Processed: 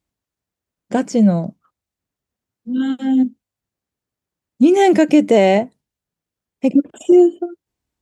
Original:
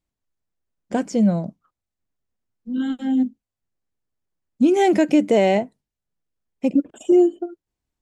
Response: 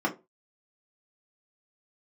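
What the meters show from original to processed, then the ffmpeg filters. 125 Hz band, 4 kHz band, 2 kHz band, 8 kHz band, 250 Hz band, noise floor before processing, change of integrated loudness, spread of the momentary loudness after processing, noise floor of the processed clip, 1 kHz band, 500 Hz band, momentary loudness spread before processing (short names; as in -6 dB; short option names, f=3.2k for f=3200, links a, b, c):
+4.5 dB, +4.5 dB, +4.5 dB, +4.5 dB, +4.5 dB, under -85 dBFS, +4.5 dB, 13 LU, under -85 dBFS, +4.5 dB, +4.5 dB, 13 LU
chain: -af "highpass=54,volume=4.5dB"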